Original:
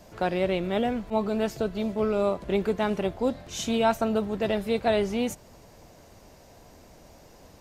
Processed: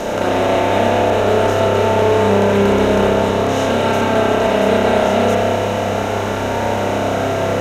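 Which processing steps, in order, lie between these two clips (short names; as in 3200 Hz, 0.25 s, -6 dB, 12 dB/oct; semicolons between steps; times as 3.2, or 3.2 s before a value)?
per-bin compression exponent 0.2; hum 50 Hz, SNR 20 dB; spring tank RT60 2.8 s, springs 30 ms, chirp 55 ms, DRR -4.5 dB; gain -2.5 dB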